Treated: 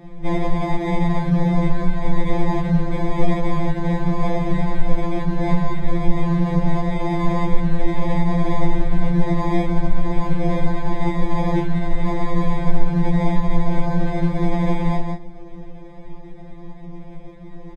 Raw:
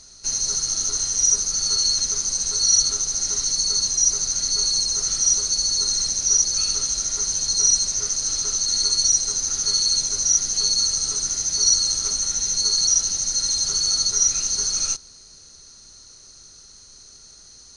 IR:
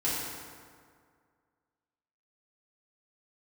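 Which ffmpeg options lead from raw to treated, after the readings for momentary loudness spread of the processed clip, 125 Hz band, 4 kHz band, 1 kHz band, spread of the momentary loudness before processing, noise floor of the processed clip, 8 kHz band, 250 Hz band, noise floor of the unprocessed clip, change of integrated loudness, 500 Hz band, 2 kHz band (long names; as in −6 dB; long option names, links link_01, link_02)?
19 LU, +23.0 dB, −22.0 dB, +18.0 dB, 5 LU, −36 dBFS, below −35 dB, +26.5 dB, −47 dBFS, −4.0 dB, +19.0 dB, +10.5 dB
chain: -filter_complex "[0:a]bandpass=frequency=5000:width_type=q:width=0.94:csg=0,flanger=delay=8.4:depth=4.8:regen=69:speed=1.4:shape=triangular,asoftclip=type=tanh:threshold=-21dB,acontrast=84,asplit=2[link_01][link_02];[link_02]adelay=36,volume=-2.5dB[link_03];[link_01][link_03]amix=inputs=2:normalize=0,aecho=1:1:177:0.398,acrusher=samples=31:mix=1:aa=0.000001,aemphasis=mode=reproduction:type=riaa,alimiter=limit=-4dB:level=0:latency=1:release=198,highshelf=frequency=5900:gain=-7,afftfilt=real='re*2.83*eq(mod(b,8),0)':imag='im*2.83*eq(mod(b,8),0)':win_size=2048:overlap=0.75"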